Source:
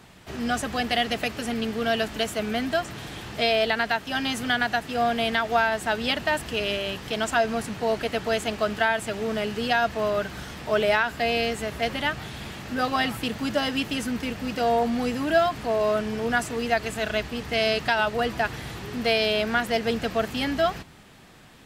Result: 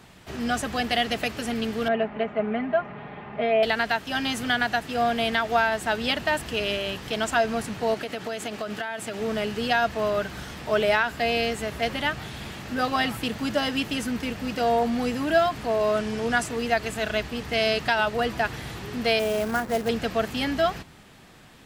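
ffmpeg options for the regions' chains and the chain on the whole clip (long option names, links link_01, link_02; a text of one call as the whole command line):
ffmpeg -i in.wav -filter_complex "[0:a]asettb=1/sr,asplit=3[link_01][link_02][link_03];[link_01]atrim=end=1.884[link_04];[link_02]atrim=start=1.88:end=3.63,asetpts=PTS-STARTPTS,afade=type=in:duration=0.004:curve=qsin,afade=type=out:start_time=1.746:duration=0.004:curve=qsin,highpass=110,equalizer=frequency=200:width_type=q:width=4:gain=-3,equalizer=frequency=330:width_type=q:width=4:gain=-5,equalizer=frequency=750:width_type=q:width=4:gain=4,equalizer=frequency=1600:width_type=q:width=4:gain=-6,lowpass=frequency=2100:width=0.5412,lowpass=frequency=2100:width=1.3066,aecho=1:1:4.9:0.59,atrim=end_sample=77175[link_05];[link_03]atrim=start=3.626[link_06];[link_04][link_05]acrossfade=duration=0.004:curve1=hsin:curve2=qsin[link_07];[link_07][link_06]acrossfade=duration=0.004:curve1=qsin:curve2=hsin,asettb=1/sr,asplit=3[link_08][link_09][link_10];[link_08]atrim=end=7.944[link_11];[link_09]atrim=start=7.94:end=9.2,asetpts=PTS-STARTPTS,afade=type=in:duration=0.004:curve=qsin,afade=type=out:start_time=1.256:duration=0.004:curve=qsin,highpass=130,bandreject=frequency=1000:width=19,acompressor=threshold=-26dB:ratio=10:attack=3.2:release=140:knee=1:detection=peak[link_12];[link_10]atrim=start=9.196[link_13];[link_11][link_12]acrossfade=duration=0.004:curve1=hsin:curve2=qsin[link_14];[link_14][link_13]acrossfade=duration=0.004:curve1=qsin:curve2=hsin,asettb=1/sr,asplit=3[link_15][link_16][link_17];[link_15]atrim=end=15.944[link_18];[link_16]atrim=start=15.94:end=16.46,asetpts=PTS-STARTPTS,afade=type=in:duration=0.004:curve=qsin,afade=type=out:start_time=0.516:duration=0.004:curve=qsin,lowpass=10000,highshelf=frequency=4500:gain=5[link_19];[link_17]atrim=start=16.456[link_20];[link_18][link_19]acrossfade=duration=0.004:curve1=hsin:curve2=qsin[link_21];[link_21][link_20]acrossfade=duration=0.004:curve1=qsin:curve2=hsin,asettb=1/sr,asplit=3[link_22][link_23][link_24];[link_22]atrim=end=19.194[link_25];[link_23]atrim=start=19.19:end=19.89,asetpts=PTS-STARTPTS,afade=type=in:duration=0.004:curve=qsin,afade=type=out:start_time=0.696:duration=0.004:curve=qsin,lowpass=1400,bandreject=frequency=50:width_type=h:width=6,bandreject=frequency=100:width_type=h:width=6,bandreject=frequency=150:width_type=h:width=6,bandreject=frequency=200:width_type=h:width=6,bandreject=frequency=250:width_type=h:width=6,bandreject=frequency=300:width_type=h:width=6,bandreject=frequency=350:width_type=h:width=6,acrusher=bits=3:mode=log:mix=0:aa=0.000001[link_26];[link_24]atrim=start=19.886[link_27];[link_25][link_26]acrossfade=duration=0.004:curve1=hsin:curve2=qsin[link_28];[link_28][link_27]acrossfade=duration=0.004:curve1=qsin:curve2=hsin" out.wav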